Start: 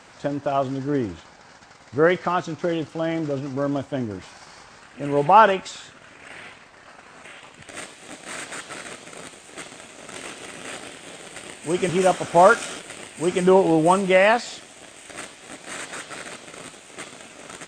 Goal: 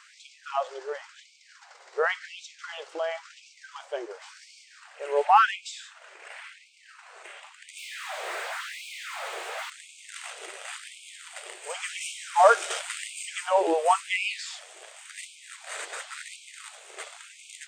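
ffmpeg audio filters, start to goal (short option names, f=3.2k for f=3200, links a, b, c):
-filter_complex "[0:a]asettb=1/sr,asplit=3[a][b][c];[a]atrim=end=7.784[d];[b]atrim=start=7.78:end=9.7,asetpts=PTS-STARTPTS,afade=t=in:d=0.004:c=qsin,afade=t=out:st=1.916:d=0.004:c=qsin,asplit=2[e][f];[f]highpass=f=720:p=1,volume=36dB,asoftclip=type=tanh:threshold=-19dB[g];[e][g]amix=inputs=2:normalize=0,lowpass=f=1.1k:p=1,volume=-6dB[h];[c]atrim=start=9.696[i];[d][h]acrossfade=d=0.004:c1=hsin:c2=qsin[j];[j][i]acrossfade=d=0.004:c1=qsin:c2=hsin,asettb=1/sr,asplit=3[k][l][m];[k]atrim=end=12.704[n];[l]atrim=start=12.7:end=13.23,asetpts=PTS-STARTPTS,afade=t=in:d=0.004:c=qsin,afade=t=out:st=0.526:d=0.004:c=qsin,acontrast=74[o];[m]atrim=start=13.226[p];[n][o]acrossfade=d=0.004:c1=hsin:c2=qsin[q];[q][p]acrossfade=d=0.004:c1=qsin:c2=hsin,afftfilt=real='re*gte(b*sr/1024,340*pow(2200/340,0.5+0.5*sin(2*PI*0.93*pts/sr)))':imag='im*gte(b*sr/1024,340*pow(2200/340,0.5+0.5*sin(2*PI*0.93*pts/sr)))':win_size=1024:overlap=0.75,volume=-2.5dB"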